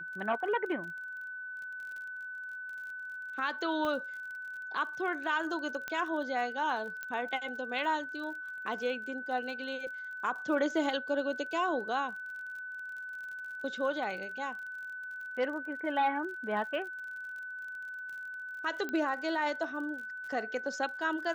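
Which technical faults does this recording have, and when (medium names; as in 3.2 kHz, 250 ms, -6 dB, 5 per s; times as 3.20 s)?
crackle 34 per s -42 dBFS
whine 1.5 kHz -39 dBFS
3.85 s: pop -22 dBFS
5.88 s: pop -21 dBFS
7.03 s: pop -24 dBFS
18.89 s: pop -23 dBFS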